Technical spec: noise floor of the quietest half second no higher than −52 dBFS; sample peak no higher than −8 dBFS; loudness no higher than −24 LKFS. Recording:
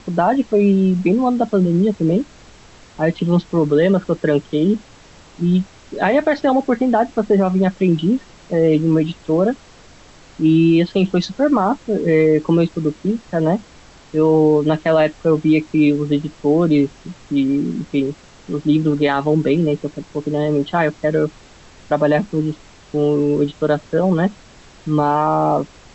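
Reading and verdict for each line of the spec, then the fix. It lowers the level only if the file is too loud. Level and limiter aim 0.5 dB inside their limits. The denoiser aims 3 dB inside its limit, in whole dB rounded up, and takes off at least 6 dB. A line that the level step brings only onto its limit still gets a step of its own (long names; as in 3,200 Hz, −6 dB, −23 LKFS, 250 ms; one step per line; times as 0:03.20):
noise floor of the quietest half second −44 dBFS: out of spec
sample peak −5.5 dBFS: out of spec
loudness −17.5 LKFS: out of spec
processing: broadband denoise 6 dB, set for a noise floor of −44 dBFS
level −7 dB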